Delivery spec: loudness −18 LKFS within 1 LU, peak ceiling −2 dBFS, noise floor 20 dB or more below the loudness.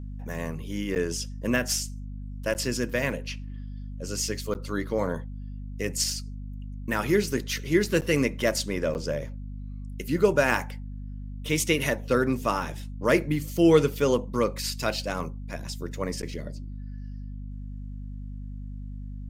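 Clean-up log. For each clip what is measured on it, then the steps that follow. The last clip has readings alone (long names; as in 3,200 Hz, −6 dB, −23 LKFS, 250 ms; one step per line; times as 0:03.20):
number of dropouts 6; longest dropout 9.2 ms; mains hum 50 Hz; hum harmonics up to 250 Hz; level of the hum −34 dBFS; integrated loudness −27.0 LKFS; sample peak −7.0 dBFS; target loudness −18.0 LKFS
→ repair the gap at 0:00.95/0:02.54/0:04.54/0:08.01/0:08.94/0:16.22, 9.2 ms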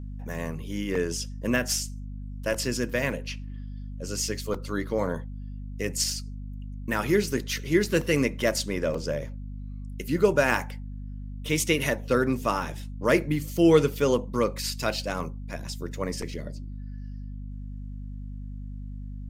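number of dropouts 0; mains hum 50 Hz; hum harmonics up to 250 Hz; level of the hum −34 dBFS
→ mains-hum notches 50/100/150/200/250 Hz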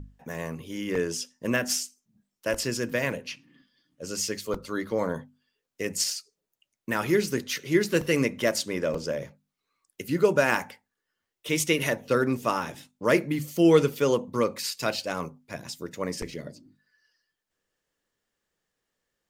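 mains hum none found; integrated loudness −27.0 LKFS; sample peak −7.0 dBFS; target loudness −18.0 LKFS
→ level +9 dB
brickwall limiter −2 dBFS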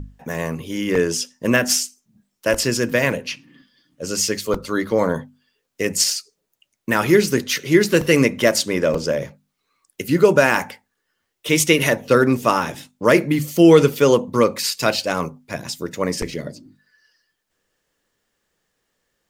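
integrated loudness −18.5 LKFS; sample peak −2.0 dBFS; background noise floor −76 dBFS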